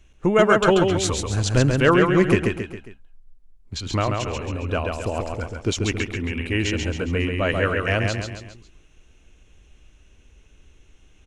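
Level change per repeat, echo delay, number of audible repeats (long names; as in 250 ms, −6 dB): −6.5 dB, 136 ms, 4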